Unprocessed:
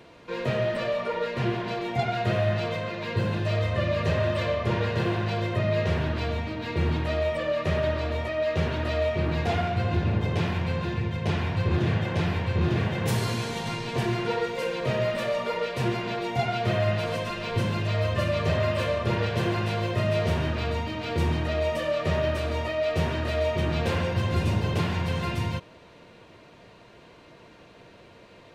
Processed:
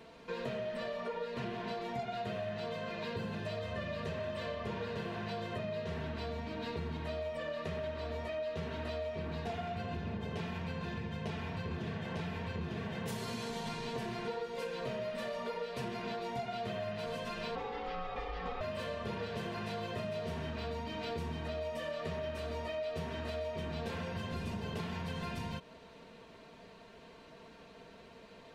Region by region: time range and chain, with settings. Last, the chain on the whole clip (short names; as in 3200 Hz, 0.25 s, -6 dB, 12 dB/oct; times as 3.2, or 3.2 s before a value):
17.55–18.61 ring modulator 640 Hz + air absorption 160 m
whole clip: comb 4.5 ms, depth 57%; compressor, threshold -31 dBFS; gain -5 dB